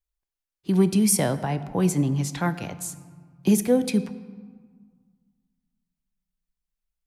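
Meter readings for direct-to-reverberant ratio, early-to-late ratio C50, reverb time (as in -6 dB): 11.5 dB, 14.0 dB, 1.8 s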